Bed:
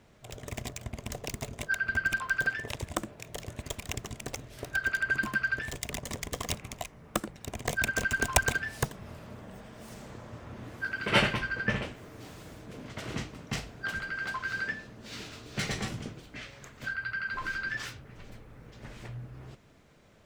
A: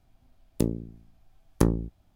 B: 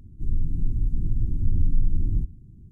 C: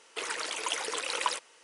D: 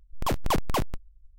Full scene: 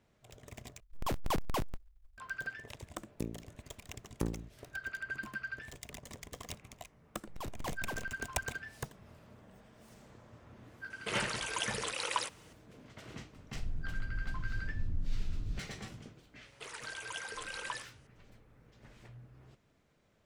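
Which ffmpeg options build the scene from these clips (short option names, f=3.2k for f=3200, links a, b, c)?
-filter_complex "[4:a]asplit=2[a][b];[3:a]asplit=2[c][d];[0:a]volume=-11.5dB[e];[a]acrusher=bits=8:mode=log:mix=0:aa=0.000001[f];[e]asplit=2[g][h];[g]atrim=end=0.804[i];[f]atrim=end=1.38,asetpts=PTS-STARTPTS,volume=-8dB[j];[h]atrim=start=2.176[k];[1:a]atrim=end=2.15,asetpts=PTS-STARTPTS,volume=-13.5dB,afade=t=in:d=0.004:c=hsin,afade=t=out:st=2.146:d=0.004:c=hsin,adelay=2600[l];[b]atrim=end=1.38,asetpts=PTS-STARTPTS,volume=-16dB,afade=t=in:d=0.004:c=hsin,afade=t=out:st=1.376:d=0.004:c=hsin,adelay=314874S[m];[c]atrim=end=1.63,asetpts=PTS-STARTPTS,volume=-4dB,afade=t=in:d=0.004:c=hsin,afade=t=out:st=1.626:d=0.004:c=hsin,adelay=480690S[n];[2:a]atrim=end=2.71,asetpts=PTS-STARTPTS,volume=-14dB,afade=t=in:d=0.004:c=hsin,afade=t=out:st=2.706:d=0.004:c=hsin,adelay=13340[o];[d]atrim=end=1.63,asetpts=PTS-STARTPTS,volume=-11.5dB,afade=t=in:d=0.004:c=hsin,afade=t=out:st=1.626:d=0.004:c=hsin,adelay=16440[p];[i][j]acrossfade=d=0.004:c1=hsin:c2=hsin[q];[q][k]acrossfade=d=0.004:c1=hsin:c2=hsin[r];[r][l][m][n][o][p]amix=inputs=6:normalize=0"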